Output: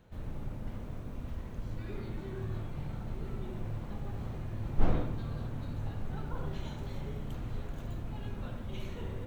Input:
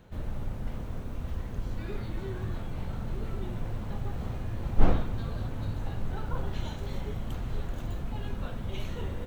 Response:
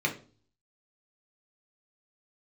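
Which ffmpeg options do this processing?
-filter_complex "[0:a]asplit=2[link_01][link_02];[1:a]atrim=start_sample=2205,lowpass=2100,adelay=73[link_03];[link_02][link_03]afir=irnorm=-1:irlink=0,volume=-12dB[link_04];[link_01][link_04]amix=inputs=2:normalize=0,volume=-6dB"

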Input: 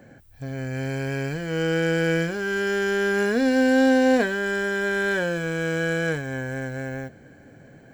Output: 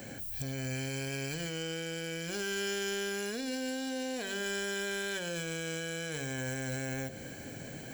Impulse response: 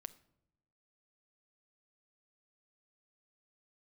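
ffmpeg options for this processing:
-af "bandreject=frequency=47.98:width_type=h:width=4,bandreject=frequency=95.96:width_type=h:width=4,bandreject=frequency=143.94:width_type=h:width=4,bandreject=frequency=191.92:width_type=h:width=4,bandreject=frequency=239.9:width_type=h:width=4,bandreject=frequency=287.88:width_type=h:width=4,bandreject=frequency=335.86:width_type=h:width=4,bandreject=frequency=383.84:width_type=h:width=4,bandreject=frequency=431.82:width_type=h:width=4,bandreject=frequency=479.8:width_type=h:width=4,bandreject=frequency=527.78:width_type=h:width=4,bandreject=frequency=575.76:width_type=h:width=4,bandreject=frequency=623.74:width_type=h:width=4,bandreject=frequency=671.72:width_type=h:width=4,bandreject=frequency=719.7:width_type=h:width=4,bandreject=frequency=767.68:width_type=h:width=4,acompressor=threshold=-33dB:ratio=6,alimiter=level_in=9dB:limit=-24dB:level=0:latency=1:release=155,volume=-9dB,aexciter=amount=3.4:drive=6:freq=2400,volume=4dB"

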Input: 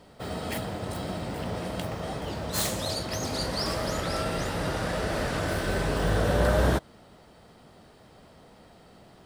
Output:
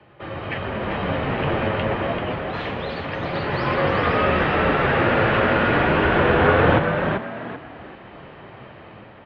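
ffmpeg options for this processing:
ffmpeg -i in.wav -filter_complex "[0:a]highpass=110,aemphasis=mode=production:type=75kf,dynaudnorm=framelen=280:gausssize=5:maxgain=9.5dB,asplit=2[link_01][link_02];[link_02]alimiter=limit=-11.5dB:level=0:latency=1,volume=-3dB[link_03];[link_01][link_03]amix=inputs=2:normalize=0,flanger=delay=4.4:depth=5.1:regen=57:speed=0.28:shape=sinusoidal,acrossover=split=460[link_04][link_05];[link_04]acrusher=samples=32:mix=1:aa=0.000001[link_06];[link_06][link_05]amix=inputs=2:normalize=0,asplit=5[link_07][link_08][link_09][link_10][link_11];[link_08]adelay=387,afreqshift=75,volume=-6dB[link_12];[link_09]adelay=774,afreqshift=150,volume=-16.5dB[link_13];[link_10]adelay=1161,afreqshift=225,volume=-26.9dB[link_14];[link_11]adelay=1548,afreqshift=300,volume=-37.4dB[link_15];[link_07][link_12][link_13][link_14][link_15]amix=inputs=5:normalize=0,highpass=frequency=170:width_type=q:width=0.5412,highpass=frequency=170:width_type=q:width=1.307,lowpass=frequency=2800:width_type=q:width=0.5176,lowpass=frequency=2800:width_type=q:width=0.7071,lowpass=frequency=2800:width_type=q:width=1.932,afreqshift=-91,volume=2.5dB" out.wav

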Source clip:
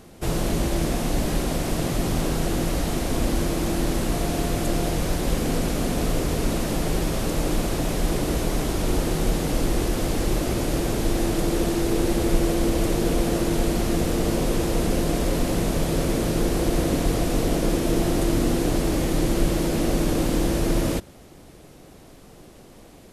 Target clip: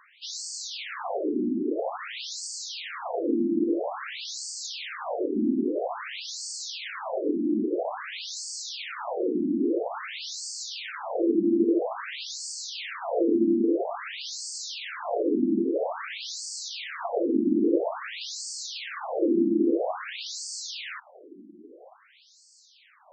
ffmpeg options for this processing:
ffmpeg -i in.wav -af "afftfilt=real='re*between(b*sr/1024,260*pow(6200/260,0.5+0.5*sin(2*PI*0.5*pts/sr))/1.41,260*pow(6200/260,0.5+0.5*sin(2*PI*0.5*pts/sr))*1.41)':imag='im*between(b*sr/1024,260*pow(6200/260,0.5+0.5*sin(2*PI*0.5*pts/sr))/1.41,260*pow(6200/260,0.5+0.5*sin(2*PI*0.5*pts/sr))*1.41)':win_size=1024:overlap=0.75,volume=4.5dB" out.wav

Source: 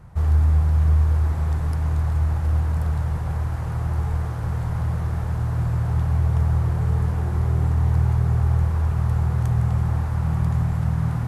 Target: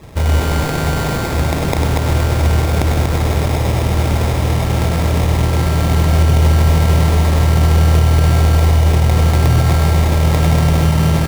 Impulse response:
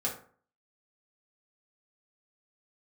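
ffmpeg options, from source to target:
-filter_complex "[0:a]lowshelf=frequency=170:gain=-9,acrossover=split=320[link_01][link_02];[link_01]acontrast=74[link_03];[link_03][link_02]amix=inputs=2:normalize=0,aexciter=amount=13.6:drive=6.2:freq=2300,acrusher=samples=30:mix=1:aa=0.000001,aecho=1:1:99.13|239.1:0.316|0.708,alimiter=level_in=8.5dB:limit=-1dB:release=50:level=0:latency=1,volume=-3dB"

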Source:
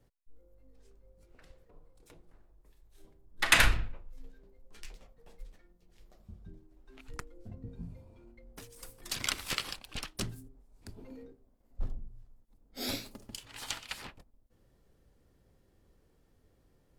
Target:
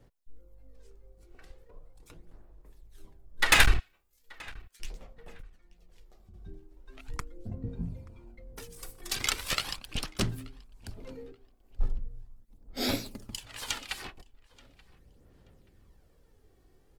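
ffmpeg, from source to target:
ffmpeg -i in.wav -filter_complex "[0:a]asettb=1/sr,asplit=3[link_01][link_02][link_03];[link_01]atrim=end=3.794[link_04];[link_02]atrim=start=3.79:end=4.8,asetpts=PTS-STARTPTS,afade=type=in:duration=0.004:curve=qsin,afade=type=out:start_time=1.006:duration=0.004:curve=qsin,aderivative[link_05];[link_03]atrim=start=4.796[link_06];[link_04][link_05]acrossfade=duration=0.004:curve1=hsin:curve2=qsin[link_07];[link_07][link_06]acrossfade=duration=0.004:curve1=qsin:curve2=hsin,asettb=1/sr,asplit=3[link_08][link_09][link_10];[link_08]atrim=end=5.404[link_11];[link_09]atrim=start=5.4:end=6.34,asetpts=PTS-STARTPTS,afade=type=in:duration=0.004:curve=qsin,afade=type=out:start_time=0.936:duration=0.004:curve=qsin,acompressor=threshold=-59dB:ratio=2.5[link_12];[link_10]atrim=start=6.336[link_13];[link_11][link_12]acrossfade=duration=0.004:curve1=hsin:curve2=qsin[link_14];[link_14][link_13]acrossfade=duration=0.004:curve1=qsin:curve2=hsin,aphaser=in_gain=1:out_gain=1:delay=2.7:decay=0.43:speed=0.39:type=sinusoidal,aeval=exprs='clip(val(0),-1,0.0891)':channel_layout=same,asplit=2[link_15][link_16];[link_16]adelay=880,lowpass=frequency=3600:poles=1,volume=-23dB,asplit=2[link_17][link_18];[link_18]adelay=880,lowpass=frequency=3600:poles=1,volume=0.27[link_19];[link_15][link_17][link_19]amix=inputs=3:normalize=0,volume=3dB" out.wav

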